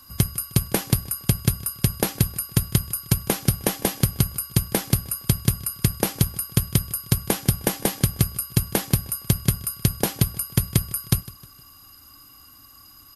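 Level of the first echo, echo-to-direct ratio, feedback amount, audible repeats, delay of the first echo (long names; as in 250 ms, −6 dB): −20.0 dB, −19.0 dB, 43%, 3, 155 ms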